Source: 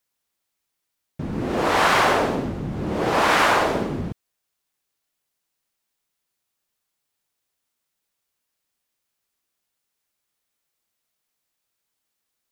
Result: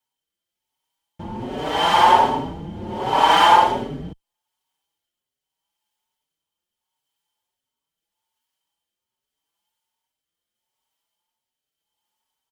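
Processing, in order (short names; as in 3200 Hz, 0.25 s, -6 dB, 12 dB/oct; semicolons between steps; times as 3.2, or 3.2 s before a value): rotary speaker horn 0.8 Hz; small resonant body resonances 890/3100 Hz, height 18 dB, ringing for 35 ms; endless flanger 4.9 ms +1.3 Hz; gain +1 dB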